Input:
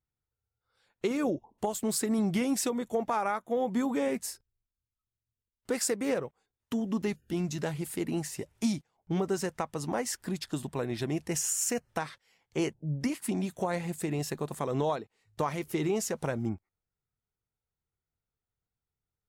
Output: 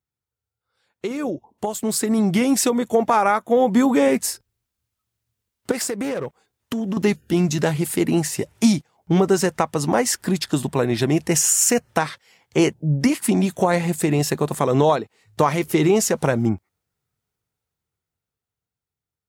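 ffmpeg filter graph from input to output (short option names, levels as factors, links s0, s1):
-filter_complex "[0:a]asettb=1/sr,asplit=3[s0][s1][s2];[s0]atrim=end=5.714[s3];[s1]atrim=start=5.71:end=6.97,asetpts=PTS-STARTPTS,afade=t=in:d=0.004:c=qsin,afade=t=out:st=1.256:d=0.004:c=qsin,acompressor=threshold=0.0224:ratio=12:attack=3.2:release=140:knee=1:detection=peak,aeval=exprs='clip(val(0),-1,0.0188)':c=same[s4];[s2]atrim=start=6.966[s5];[s3][s4]acrossfade=d=0.004:c1=hsin:c2=qsin[s6];[s6][s5]acrossfade=d=0.004:c1=qsin:c2=hsin,highpass=70,dynaudnorm=f=330:g=13:m=3.76,volume=1.19"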